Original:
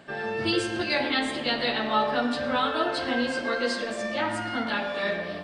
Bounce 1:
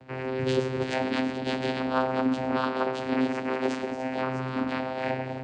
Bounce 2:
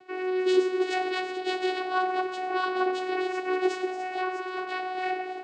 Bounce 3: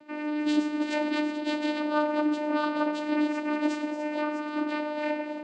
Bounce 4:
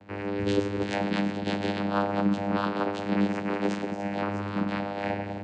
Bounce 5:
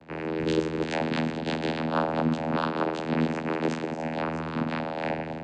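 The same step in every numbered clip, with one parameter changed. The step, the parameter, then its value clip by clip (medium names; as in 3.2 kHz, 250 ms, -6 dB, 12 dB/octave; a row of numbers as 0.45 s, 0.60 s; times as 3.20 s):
vocoder, frequency: 130 Hz, 370 Hz, 300 Hz, 100 Hz, 80 Hz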